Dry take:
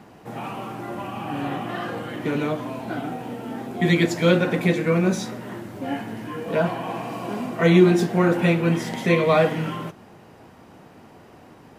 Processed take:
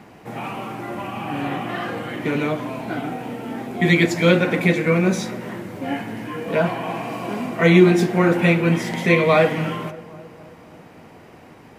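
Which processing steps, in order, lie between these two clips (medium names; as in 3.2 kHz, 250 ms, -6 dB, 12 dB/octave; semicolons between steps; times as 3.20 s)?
peaking EQ 2.2 kHz +5.5 dB 0.46 oct; filtered feedback delay 270 ms, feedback 62%, low-pass 1.7 kHz, level -18 dB; trim +2 dB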